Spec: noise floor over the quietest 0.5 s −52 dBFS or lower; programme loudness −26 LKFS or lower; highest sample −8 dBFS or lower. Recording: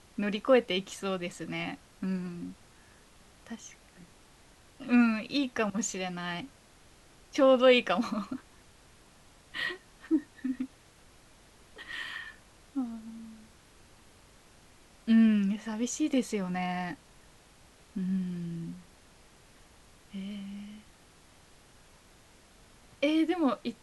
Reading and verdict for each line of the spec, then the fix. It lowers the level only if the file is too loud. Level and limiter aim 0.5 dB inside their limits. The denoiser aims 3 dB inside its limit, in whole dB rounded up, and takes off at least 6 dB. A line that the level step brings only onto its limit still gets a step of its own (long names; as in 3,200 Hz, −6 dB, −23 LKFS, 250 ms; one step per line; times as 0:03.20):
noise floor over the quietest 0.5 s −58 dBFS: in spec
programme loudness −30.0 LKFS: in spec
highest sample −11.5 dBFS: in spec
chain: no processing needed